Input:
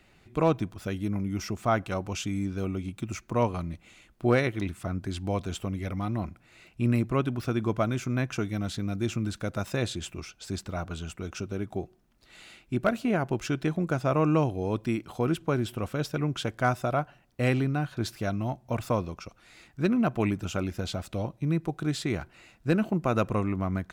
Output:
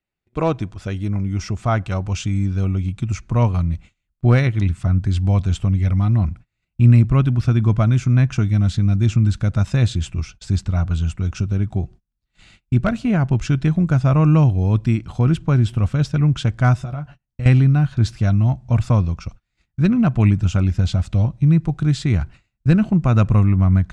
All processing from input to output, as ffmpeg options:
ffmpeg -i in.wav -filter_complex "[0:a]asettb=1/sr,asplit=3[link_01][link_02][link_03];[link_01]atrim=end=16.774[link_04];[link_02]atrim=start=16.77:end=17.46,asetpts=PTS-STARTPTS,afade=type=in:duration=0.004:curve=qsin,afade=type=out:start_time=0.686:duration=0.004:curve=qsin,acompressor=threshold=-39dB:ratio=3:attack=3.2:release=140:knee=1:detection=peak,asplit=2[link_05][link_06];[link_06]adelay=14,volume=-7dB[link_07];[link_05][link_07]amix=inputs=2:normalize=0,atrim=end_sample=30429[link_08];[link_03]atrim=start=17.456[link_09];[link_04][link_08]acrossfade=duration=0.004:curve1=hsin:curve2=qsin[link_10];[link_10][link_09]acrossfade=duration=0.004:curve1=qsin:curve2=hsin,lowpass=frequency=8600:width=0.5412,lowpass=frequency=8600:width=1.3066,agate=range=-31dB:threshold=-49dB:ratio=16:detection=peak,asubboost=boost=7.5:cutoff=140,volume=4.5dB" out.wav

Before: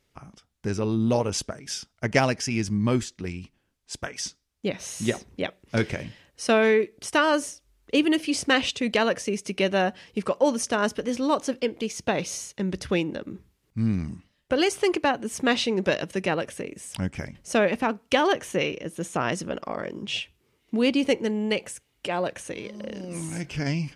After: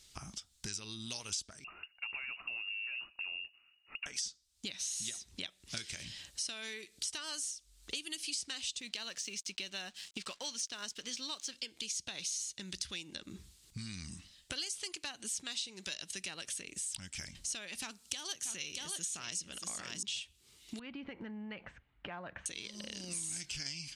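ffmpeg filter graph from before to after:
ffmpeg -i in.wav -filter_complex "[0:a]asettb=1/sr,asplit=3[link_01][link_02][link_03];[link_01]atrim=end=1.644[link_04];[link_02]atrim=start=1.64:end=4.06,asetpts=PTS-STARTPTS,afade=type=in:duration=0.004:curve=qsin,afade=type=out:start_time=2.416:duration=0.004:curve=qsin,acompressor=threshold=-29dB:ratio=4:attack=3.2:release=140:knee=1:detection=peak,asoftclip=type=hard:threshold=-30dB,lowpass=frequency=2500:width_type=q:width=0.5098,lowpass=frequency=2500:width_type=q:width=0.6013,lowpass=frequency=2500:width_type=q:width=0.9,lowpass=frequency=2500:width_type=q:width=2.563,afreqshift=-2900[link_05];[link_03]atrim=start=4.056[link_06];[link_04][link_05]acrossfade=duration=0.004:curve1=hsin:curve2=qsin[link_07];[link_07][link_06]acrossfade=duration=0.004:curve1=qsin:curve2=hsin,asettb=1/sr,asplit=3[link_08][link_09][link_10];[link_08]atrim=end=8.804[link_11];[link_09]atrim=start=8.8:end=11.54,asetpts=PTS-STARTPTS,afade=type=in:duration=0.004:curve=qsin,afade=type=out:start_time=2.736:duration=0.004:curve=qsin,highpass=120,lowpass=5600,aeval=exprs='sgn(val(0))*max(abs(val(0))-0.00211,0)':channel_layout=same[link_12];[link_10]atrim=start=11.536[link_13];[link_11][link_12]acrossfade=duration=0.004:curve1=hsin:curve2=qsin[link_14];[link_14][link_13]acrossfade=duration=0.004:curve1=qsin:curve2=hsin,asettb=1/sr,asplit=3[link_15][link_16][link_17];[link_15]atrim=end=17.774[link_18];[link_16]atrim=start=17.77:end=20.03,asetpts=PTS-STARTPTS,afade=type=in:duration=0.004:curve=qsin,afade=type=out:start_time=2.256:duration=0.004:curve=qsin,bass=frequency=250:gain=4,treble=frequency=4000:gain=6,aecho=1:1:633:0.299,atrim=end_sample=99666[link_19];[link_17]atrim=start=20.026[link_20];[link_18][link_19]acrossfade=duration=0.004:curve1=hsin:curve2=qsin[link_21];[link_21][link_20]acrossfade=duration=0.004:curve1=qsin:curve2=hsin,asettb=1/sr,asplit=3[link_22][link_23][link_24];[link_22]atrim=end=20.794[link_25];[link_23]atrim=start=20.79:end=22.46,asetpts=PTS-STARTPTS,afade=type=in:duration=0.004:curve=qsin,afade=type=out:start_time=1.666:duration=0.004:curve=qsin,lowpass=frequency=1700:width=0.5412,lowpass=frequency=1700:width=1.3066,equalizer=frequency=400:width=1.9:gain=-6.5,acompressor=threshold=-32dB:ratio=2.5:attack=3.2:release=140:knee=1:detection=peak[link_26];[link_24]atrim=start=22.456[link_27];[link_25][link_26]acrossfade=duration=0.004:curve1=hsin:curve2=qsin[link_28];[link_28][link_27]acrossfade=duration=0.004:curve1=qsin:curve2=hsin,acrossover=split=1400|5900[link_29][link_30][link_31];[link_29]acompressor=threshold=-36dB:ratio=4[link_32];[link_30]acompressor=threshold=-36dB:ratio=4[link_33];[link_31]acompressor=threshold=-41dB:ratio=4[link_34];[link_32][link_33][link_34]amix=inputs=3:normalize=0,equalizer=frequency=125:width_type=o:width=1:gain=-6,equalizer=frequency=250:width_type=o:width=1:gain=-5,equalizer=frequency=500:width_type=o:width=1:gain=-11,equalizer=frequency=1000:width_type=o:width=1:gain=-4,equalizer=frequency=2000:width_type=o:width=1:gain=-4,equalizer=frequency=4000:width_type=o:width=1:gain=9,equalizer=frequency=8000:width_type=o:width=1:gain=12,acompressor=threshold=-48dB:ratio=3,volume=5.5dB" out.wav

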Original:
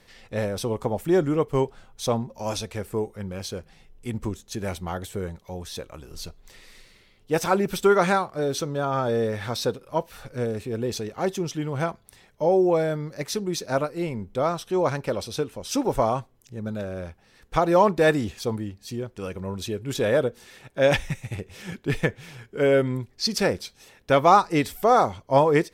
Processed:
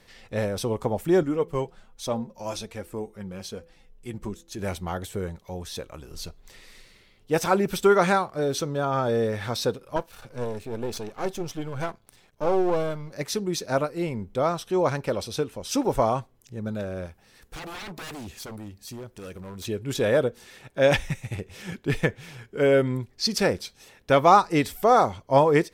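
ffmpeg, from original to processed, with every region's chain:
ffmpeg -i in.wav -filter_complex "[0:a]asettb=1/sr,asplit=3[link_01][link_02][link_03];[link_01]atrim=end=1.234[link_04];[link_02]atrim=start=1.23:end=4.59,asetpts=PTS-STARTPTS,afade=type=in:duration=0.004:curve=qsin,afade=type=out:start_time=3.356:duration=0.004:curve=qsin,bandreject=frequency=167.8:width_type=h:width=4,bandreject=frequency=335.6:width_type=h:width=4,bandreject=frequency=503.4:width_type=h:width=4,flanger=delay=3:depth=3.2:regen=41:speed=1.2:shape=triangular[link_05];[link_03]atrim=start=4.586[link_06];[link_04][link_05]acrossfade=duration=0.004:curve1=hsin:curve2=qsin[link_07];[link_07][link_06]acrossfade=duration=0.004:curve1=qsin:curve2=hsin,asettb=1/sr,asplit=3[link_08][link_09][link_10];[link_08]atrim=end=9.964[link_11];[link_09]atrim=start=9.96:end=13.13,asetpts=PTS-STARTPTS,afade=type=in:duration=0.004:curve=qsin,afade=type=out:start_time=3.166:duration=0.004:curve=qsin,aeval=exprs='if(lt(val(0),0),0.251*val(0),val(0))':channel_layout=same,bandreject=frequency=1900:width=14[link_12];[link_10]atrim=start=13.126[link_13];[link_11][link_12]acrossfade=duration=0.004:curve1=hsin:curve2=qsin[link_14];[link_14][link_13]acrossfade=duration=0.004:curve1=qsin:curve2=hsin,asettb=1/sr,asplit=3[link_15][link_16][link_17];[link_15]atrim=end=17.064[link_18];[link_16]atrim=start=17.06:end=19.65,asetpts=PTS-STARTPTS,afade=type=in:duration=0.004:curve=qsin,afade=type=out:start_time=2.586:duration=0.004:curve=qsin,highshelf=frequency=7500:gain=9.5,acompressor=threshold=-44dB:ratio=1.5:attack=3.2:release=140:knee=1:detection=peak,aeval=exprs='0.0237*(abs(mod(val(0)/0.0237+3,4)-2)-1)':channel_layout=same[link_19];[link_17]atrim=start=19.646[link_20];[link_18][link_19]acrossfade=duration=0.004:curve1=hsin:curve2=qsin[link_21];[link_21][link_20]acrossfade=duration=0.004:curve1=qsin:curve2=hsin" out.wav

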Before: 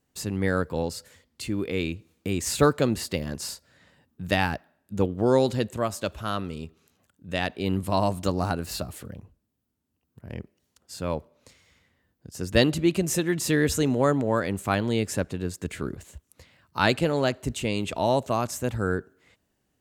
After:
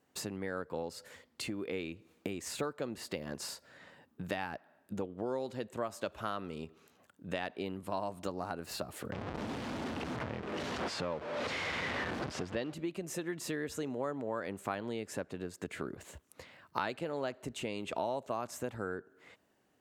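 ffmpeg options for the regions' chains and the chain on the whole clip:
ffmpeg -i in.wav -filter_complex "[0:a]asettb=1/sr,asplit=3[link_01][link_02][link_03];[link_01]atrim=end=9.124[link_04];[link_02]atrim=start=9.12:end=12.73,asetpts=PTS-STARTPTS,afade=type=in:duration=0.004:curve=qsin,afade=type=out:start_time=3.606:duration=0.004:curve=qsin,aeval=exprs='val(0)+0.5*0.0335*sgn(val(0))':channel_layout=same,lowpass=4200[link_05];[link_03]atrim=start=12.726[link_06];[link_04][link_05]acrossfade=duration=0.004:curve1=hsin:curve2=qsin[link_07];[link_07][link_06]acrossfade=duration=0.004:curve1=qsin:curve2=hsin,acompressor=threshold=-36dB:ratio=12,highpass=frequency=470:poles=1,highshelf=frequency=2600:gain=-11,volume=7.5dB" out.wav

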